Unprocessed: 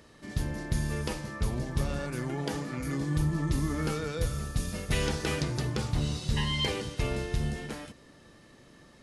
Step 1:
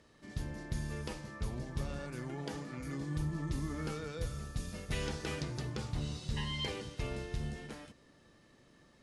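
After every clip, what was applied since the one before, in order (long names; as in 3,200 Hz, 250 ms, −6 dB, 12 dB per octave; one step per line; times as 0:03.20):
low-pass filter 10,000 Hz 12 dB per octave
level −8 dB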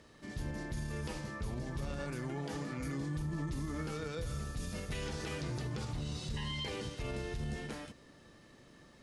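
brickwall limiter −35 dBFS, peak gain reduction 9.5 dB
level +4.5 dB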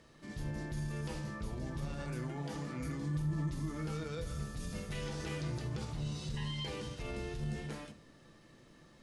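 convolution reverb RT60 0.40 s, pre-delay 6 ms, DRR 8 dB
level −2.5 dB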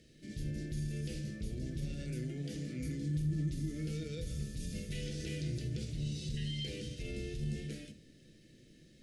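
Butterworth band-reject 1,000 Hz, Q 0.57
level +1 dB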